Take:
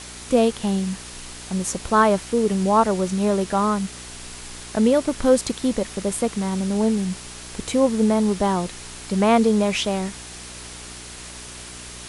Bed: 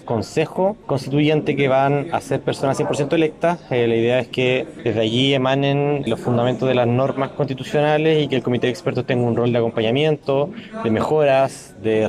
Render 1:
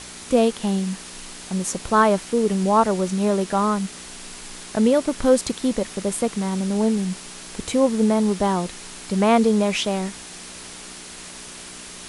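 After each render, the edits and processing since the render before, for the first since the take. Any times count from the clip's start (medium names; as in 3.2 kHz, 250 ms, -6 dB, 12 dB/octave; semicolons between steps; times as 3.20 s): de-hum 60 Hz, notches 2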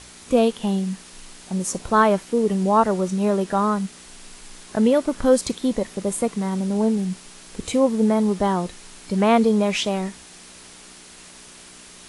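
noise print and reduce 6 dB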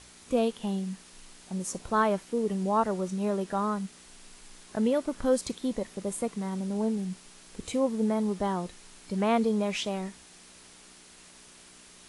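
trim -8.5 dB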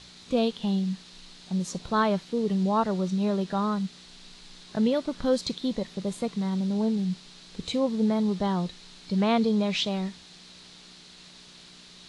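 fifteen-band graphic EQ 160 Hz +9 dB, 4 kHz +12 dB, 10 kHz -12 dB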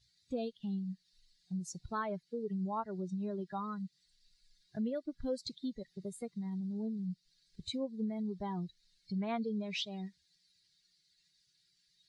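expander on every frequency bin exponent 2; compression 2:1, threshold -41 dBFS, peak gain reduction 11.5 dB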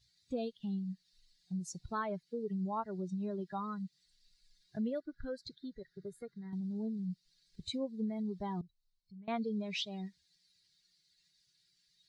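5.00–6.53 s: FFT filter 140 Hz 0 dB, 220 Hz -9 dB, 410 Hz +1 dB, 610 Hz -9 dB, 1.1 kHz -5 dB, 1.5 kHz +14 dB, 2.6 kHz -14 dB, 4 kHz -5 dB, 8.5 kHz -14 dB, 13 kHz -5 dB; 8.61–9.28 s: amplifier tone stack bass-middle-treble 10-0-1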